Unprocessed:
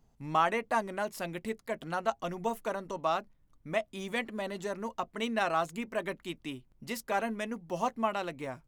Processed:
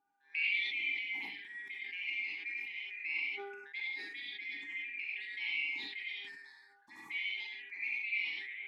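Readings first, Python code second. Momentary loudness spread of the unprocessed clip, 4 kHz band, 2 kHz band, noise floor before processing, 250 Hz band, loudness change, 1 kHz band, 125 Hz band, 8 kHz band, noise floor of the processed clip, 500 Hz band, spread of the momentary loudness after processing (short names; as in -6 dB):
9 LU, +2.5 dB, +4.0 dB, -68 dBFS, -25.0 dB, -3.0 dB, -27.0 dB, under -30 dB, under -20 dB, -65 dBFS, -24.5 dB, 10 LU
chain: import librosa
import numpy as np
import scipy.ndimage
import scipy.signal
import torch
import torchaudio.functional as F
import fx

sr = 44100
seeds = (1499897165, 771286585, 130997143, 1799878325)

p1 = fx.band_shuffle(x, sr, order='4123')
p2 = fx.low_shelf(p1, sr, hz=75.0, db=-12.0)
p3 = fx.dmg_buzz(p2, sr, base_hz=400.0, harmonics=5, level_db=-67.0, tilt_db=-8, odd_only=False)
p4 = fx.vowel_filter(p3, sr, vowel='u')
p5 = fx.env_phaser(p4, sr, low_hz=370.0, high_hz=1600.0, full_db=-47.0)
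p6 = p5 + fx.room_early_taps(p5, sr, ms=(45, 68), db=(-10.0, -10.0), dry=0)
p7 = fx.rev_gated(p6, sr, seeds[0], gate_ms=120, shape='rising', drr_db=-4.0)
p8 = fx.sustainer(p7, sr, db_per_s=39.0)
y = p8 * librosa.db_to_amplitude(5.5)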